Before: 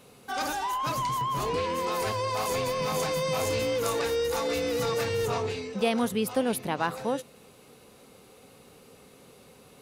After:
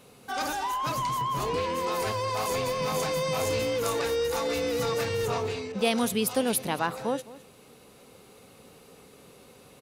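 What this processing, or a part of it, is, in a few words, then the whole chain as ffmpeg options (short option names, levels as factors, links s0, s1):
ducked delay: -filter_complex "[0:a]asplit=3[s0][s1][s2];[s1]adelay=211,volume=0.501[s3];[s2]apad=whole_len=442042[s4];[s3][s4]sidechaincompress=threshold=0.0141:ratio=8:attack=16:release=986[s5];[s0][s5]amix=inputs=2:normalize=0,asettb=1/sr,asplit=3[s6][s7][s8];[s6]atrim=end=5.724[s9];[s7]atrim=start=5.72:end=6.8,asetpts=PTS-STARTPTS,afade=t=in:d=0.004:c=qsin,afade=t=out:st=1.076:d=0.004:c=qsin,adynamicequalizer=threshold=0.00708:dfrequency=2800:dqfactor=0.7:tfrequency=2800:tqfactor=0.7:attack=5:release=100:ratio=0.375:range=3.5:mode=boostabove:tftype=highshelf[s10];[s8]atrim=start=6.796[s11];[s9][s10]acrossfade=d=0.004:c1=hsin:c2=qsin[s12];[s12][s11]acrossfade=d=0.004:c1=qsin:c2=hsin"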